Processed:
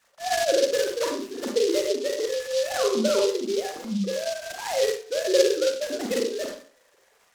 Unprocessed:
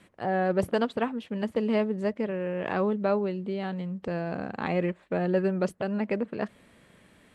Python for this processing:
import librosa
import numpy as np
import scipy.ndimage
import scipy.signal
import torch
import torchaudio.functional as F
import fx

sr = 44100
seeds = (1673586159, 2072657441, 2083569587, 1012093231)

y = fx.sine_speech(x, sr)
y = fx.rev_schroeder(y, sr, rt60_s=0.45, comb_ms=32, drr_db=-0.5)
y = fx.noise_mod_delay(y, sr, seeds[0], noise_hz=4300.0, depth_ms=0.077)